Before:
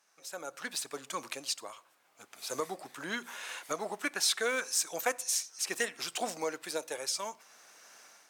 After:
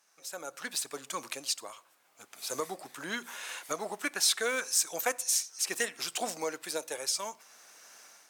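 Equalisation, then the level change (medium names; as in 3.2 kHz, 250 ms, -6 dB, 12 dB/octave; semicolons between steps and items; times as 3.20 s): treble shelf 5.8 kHz +5 dB; 0.0 dB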